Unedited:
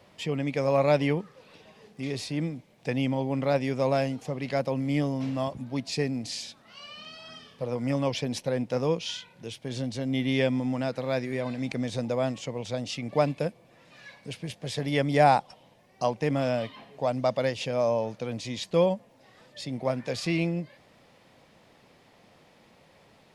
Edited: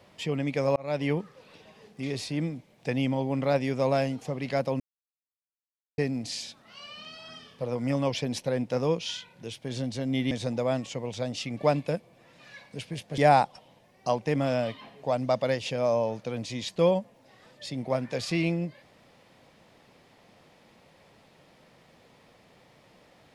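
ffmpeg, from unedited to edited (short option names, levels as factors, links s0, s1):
-filter_complex "[0:a]asplit=6[s0][s1][s2][s3][s4][s5];[s0]atrim=end=0.76,asetpts=PTS-STARTPTS,afade=t=out:st=0.756:d=0.004:c=hsin[s6];[s1]atrim=start=0.76:end=4.8,asetpts=PTS-STARTPTS,afade=t=in:d=0.4,afade=t=out:st=4.036:d=0.004:c=hsin[s7];[s2]atrim=start=4.8:end=5.98,asetpts=PTS-STARTPTS,volume=0[s8];[s3]atrim=start=5.98:end=10.312,asetpts=PTS-STARTPTS,afade=t=in:d=0.004:c=hsin[s9];[s4]atrim=start=11.828:end=14.702[s10];[s5]atrim=start=15.128[s11];[s6][s7][s8][s9]concat=n=4:v=0:a=1[s12];[s12][s10]acrossfade=d=0.004:c1=hsin:c2=hsin[s13];[s13][s11]acrossfade=d=0.004:c1=hsin:c2=hsin"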